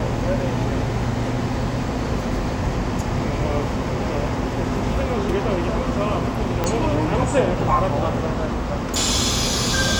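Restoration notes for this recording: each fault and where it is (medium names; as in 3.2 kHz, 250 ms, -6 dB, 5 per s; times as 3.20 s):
6.64 s: pop -7 dBFS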